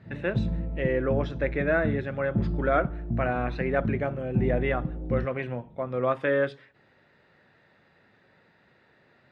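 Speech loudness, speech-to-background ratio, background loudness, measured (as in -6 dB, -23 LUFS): -29.0 LUFS, 3.5 dB, -32.5 LUFS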